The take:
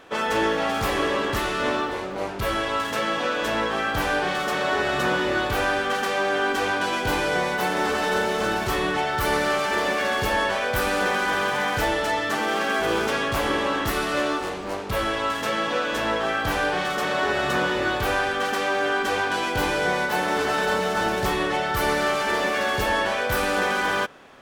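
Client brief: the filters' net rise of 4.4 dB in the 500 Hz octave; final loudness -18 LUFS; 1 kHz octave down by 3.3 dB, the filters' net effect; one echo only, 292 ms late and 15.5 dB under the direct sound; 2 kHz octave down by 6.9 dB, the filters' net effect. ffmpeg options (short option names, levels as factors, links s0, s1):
-af "equalizer=f=500:t=o:g=7,equalizer=f=1000:t=o:g=-5,equalizer=f=2000:t=o:g=-8,aecho=1:1:292:0.168,volume=1.88"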